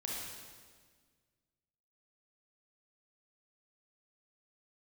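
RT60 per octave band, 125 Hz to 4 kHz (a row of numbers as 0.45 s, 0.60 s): 2.2 s, 2.0 s, 1.7 s, 1.5 s, 1.5 s, 1.5 s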